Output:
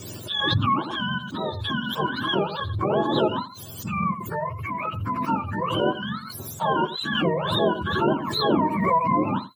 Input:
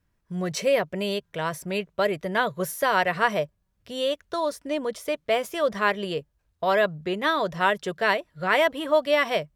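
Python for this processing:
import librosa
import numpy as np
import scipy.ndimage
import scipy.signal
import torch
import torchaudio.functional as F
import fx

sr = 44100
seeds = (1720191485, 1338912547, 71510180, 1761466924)

p1 = fx.octave_mirror(x, sr, pivot_hz=780.0)
p2 = fx.notch(p1, sr, hz=2000.0, q=5.2)
p3 = p2 + fx.echo_single(p2, sr, ms=85, db=-14.5, dry=0)
y = fx.pre_swell(p3, sr, db_per_s=37.0)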